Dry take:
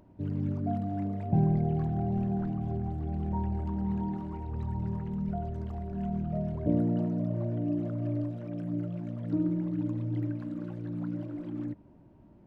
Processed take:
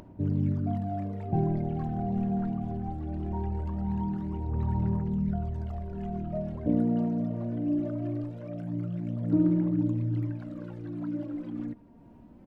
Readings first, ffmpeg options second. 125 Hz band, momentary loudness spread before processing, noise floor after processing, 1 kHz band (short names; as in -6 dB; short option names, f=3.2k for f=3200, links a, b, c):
+0.5 dB, 9 LU, -51 dBFS, +1.0 dB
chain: -filter_complex "[0:a]asplit=2[a][b];[b]aecho=0:1:158:0.0841[c];[a][c]amix=inputs=2:normalize=0,aphaser=in_gain=1:out_gain=1:delay=4.3:decay=0.46:speed=0.21:type=sinusoidal,acompressor=mode=upward:threshold=-45dB:ratio=2.5"